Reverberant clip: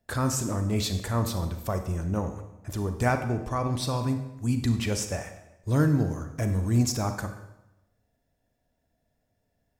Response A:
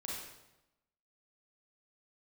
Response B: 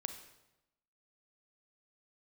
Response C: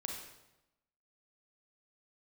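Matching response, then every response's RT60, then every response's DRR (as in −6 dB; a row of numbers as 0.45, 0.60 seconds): B; 0.95, 0.95, 0.95 seconds; −5.0, 7.0, 0.5 decibels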